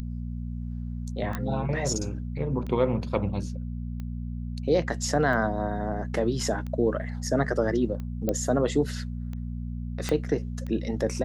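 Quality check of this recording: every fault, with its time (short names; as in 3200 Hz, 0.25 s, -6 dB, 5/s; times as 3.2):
hum 60 Hz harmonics 4 -33 dBFS
tick 45 rpm -25 dBFS
1.35 pop -16 dBFS
8.29 pop -13 dBFS
10.09 pop -13 dBFS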